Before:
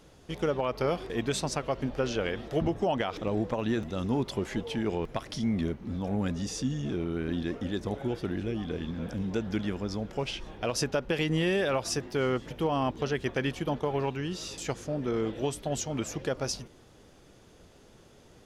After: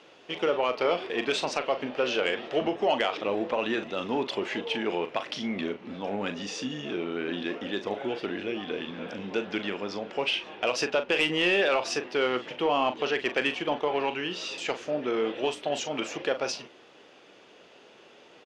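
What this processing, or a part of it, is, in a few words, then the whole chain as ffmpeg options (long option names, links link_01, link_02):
intercom: -filter_complex "[0:a]highpass=380,lowpass=4200,equalizer=frequency=2700:width_type=o:width=0.55:gain=7.5,asoftclip=type=tanh:threshold=-19dB,asplit=2[link_01][link_02];[link_02]adelay=40,volume=-10dB[link_03];[link_01][link_03]amix=inputs=2:normalize=0,volume=5dB"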